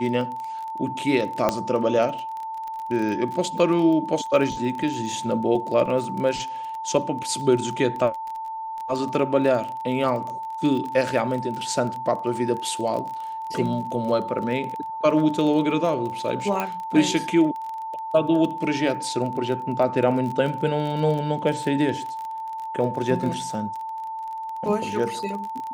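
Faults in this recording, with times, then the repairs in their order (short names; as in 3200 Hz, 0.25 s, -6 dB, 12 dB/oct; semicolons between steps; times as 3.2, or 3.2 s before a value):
crackle 24/s -29 dBFS
tone 890 Hz -29 dBFS
1.49 pop -7 dBFS
16.6 pop -11 dBFS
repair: de-click; notch 890 Hz, Q 30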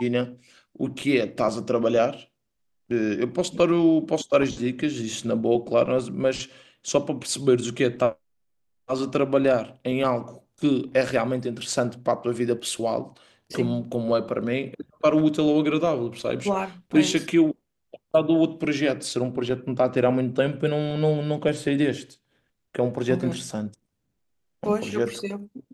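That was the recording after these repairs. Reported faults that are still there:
1.49 pop
16.6 pop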